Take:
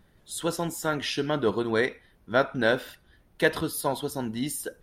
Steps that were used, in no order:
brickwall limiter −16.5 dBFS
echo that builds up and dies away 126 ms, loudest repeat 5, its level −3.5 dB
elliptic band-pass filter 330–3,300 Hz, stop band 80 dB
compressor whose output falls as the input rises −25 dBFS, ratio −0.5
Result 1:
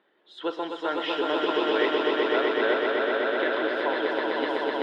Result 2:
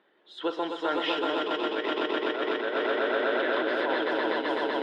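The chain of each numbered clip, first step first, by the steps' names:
elliptic band-pass filter, then brickwall limiter, then compressor whose output falls as the input rises, then echo that builds up and dies away
brickwall limiter, then echo that builds up and dies away, then compressor whose output falls as the input rises, then elliptic band-pass filter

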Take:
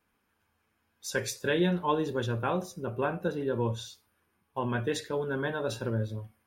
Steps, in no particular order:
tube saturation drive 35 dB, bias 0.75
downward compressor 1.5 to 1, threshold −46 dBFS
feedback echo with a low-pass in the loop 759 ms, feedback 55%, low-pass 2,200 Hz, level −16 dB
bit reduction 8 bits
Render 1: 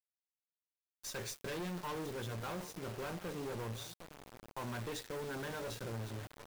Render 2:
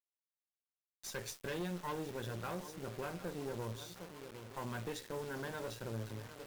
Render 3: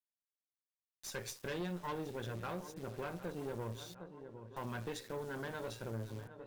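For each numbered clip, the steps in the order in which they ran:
tube saturation, then feedback echo with a low-pass in the loop, then downward compressor, then bit reduction
feedback echo with a low-pass in the loop, then downward compressor, then bit reduction, then tube saturation
bit reduction, then feedback echo with a low-pass in the loop, then downward compressor, then tube saturation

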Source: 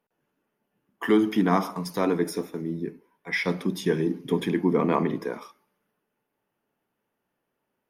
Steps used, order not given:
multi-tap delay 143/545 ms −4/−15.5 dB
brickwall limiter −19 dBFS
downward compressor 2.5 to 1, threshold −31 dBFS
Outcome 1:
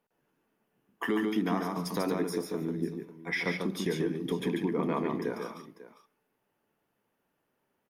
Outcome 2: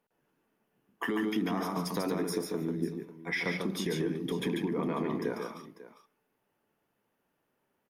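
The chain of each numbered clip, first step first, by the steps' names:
downward compressor, then brickwall limiter, then multi-tap delay
brickwall limiter, then downward compressor, then multi-tap delay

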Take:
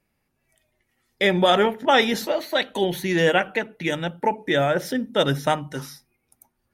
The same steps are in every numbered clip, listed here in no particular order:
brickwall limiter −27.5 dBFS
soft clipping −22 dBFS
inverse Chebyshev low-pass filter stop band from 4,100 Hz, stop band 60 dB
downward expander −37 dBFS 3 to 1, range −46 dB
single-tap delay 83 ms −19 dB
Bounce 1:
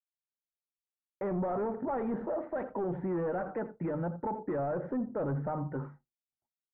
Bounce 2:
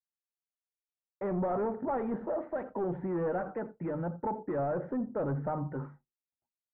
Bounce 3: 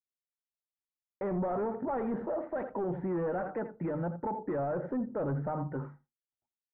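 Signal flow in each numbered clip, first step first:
soft clipping, then single-tap delay, then downward expander, then inverse Chebyshev low-pass filter, then brickwall limiter
soft clipping, then brickwall limiter, then single-tap delay, then downward expander, then inverse Chebyshev low-pass filter
downward expander, then single-tap delay, then soft clipping, then inverse Chebyshev low-pass filter, then brickwall limiter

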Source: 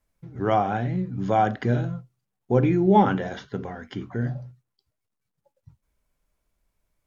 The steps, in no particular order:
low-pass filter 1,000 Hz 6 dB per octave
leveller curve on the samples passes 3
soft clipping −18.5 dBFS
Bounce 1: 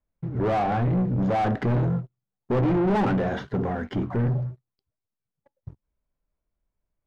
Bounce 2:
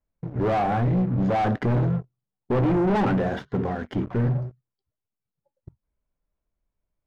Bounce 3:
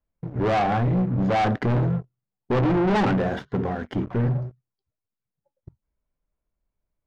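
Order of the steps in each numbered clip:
soft clipping, then leveller curve on the samples, then low-pass filter
leveller curve on the samples, then soft clipping, then low-pass filter
leveller curve on the samples, then low-pass filter, then soft clipping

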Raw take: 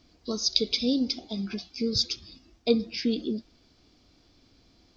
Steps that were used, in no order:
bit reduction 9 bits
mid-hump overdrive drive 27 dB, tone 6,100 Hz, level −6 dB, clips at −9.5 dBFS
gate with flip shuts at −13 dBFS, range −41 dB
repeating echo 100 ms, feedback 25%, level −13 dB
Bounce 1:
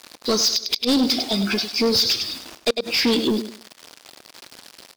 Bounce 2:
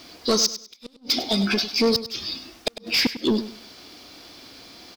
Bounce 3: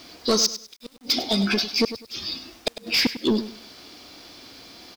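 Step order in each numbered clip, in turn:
bit reduction, then gate with flip, then repeating echo, then mid-hump overdrive
mid-hump overdrive, then bit reduction, then gate with flip, then repeating echo
mid-hump overdrive, then gate with flip, then repeating echo, then bit reduction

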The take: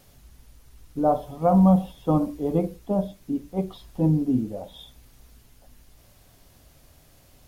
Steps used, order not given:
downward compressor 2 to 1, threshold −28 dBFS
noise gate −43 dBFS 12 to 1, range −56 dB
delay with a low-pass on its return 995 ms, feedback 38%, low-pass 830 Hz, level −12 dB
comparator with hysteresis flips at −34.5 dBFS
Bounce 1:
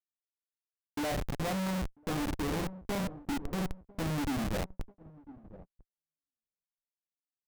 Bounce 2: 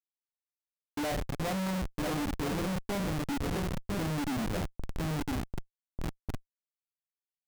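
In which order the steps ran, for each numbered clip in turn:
downward compressor, then comparator with hysteresis, then delay with a low-pass on its return, then noise gate
delay with a low-pass on its return, then downward compressor, then comparator with hysteresis, then noise gate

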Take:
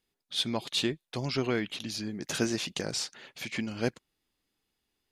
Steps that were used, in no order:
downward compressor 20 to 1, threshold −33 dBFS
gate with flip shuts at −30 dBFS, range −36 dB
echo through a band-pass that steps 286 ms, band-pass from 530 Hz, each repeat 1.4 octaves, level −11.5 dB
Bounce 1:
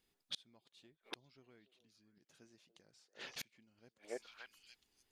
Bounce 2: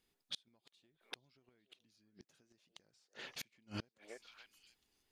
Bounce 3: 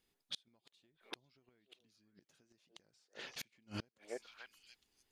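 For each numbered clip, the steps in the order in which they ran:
echo through a band-pass that steps, then gate with flip, then downward compressor
downward compressor, then echo through a band-pass that steps, then gate with flip
echo through a band-pass that steps, then downward compressor, then gate with flip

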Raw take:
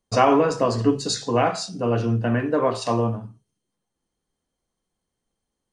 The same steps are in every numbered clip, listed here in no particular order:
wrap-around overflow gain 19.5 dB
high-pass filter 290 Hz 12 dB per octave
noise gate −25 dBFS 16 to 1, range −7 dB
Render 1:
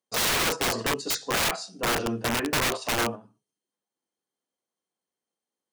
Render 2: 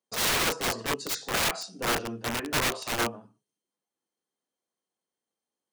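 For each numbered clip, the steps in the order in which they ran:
noise gate, then high-pass filter, then wrap-around overflow
high-pass filter, then wrap-around overflow, then noise gate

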